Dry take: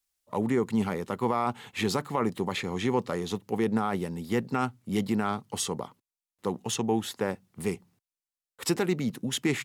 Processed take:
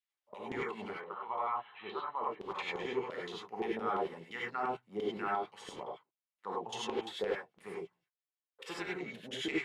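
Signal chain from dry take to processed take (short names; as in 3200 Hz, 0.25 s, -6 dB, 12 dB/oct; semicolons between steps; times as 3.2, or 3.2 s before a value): 0.9–2.5 rippled Chebyshev low-pass 4100 Hz, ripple 9 dB; LFO band-pass saw down 5.8 Hz 400–3200 Hz; non-linear reverb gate 0.12 s rising, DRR -4.5 dB; gain -4 dB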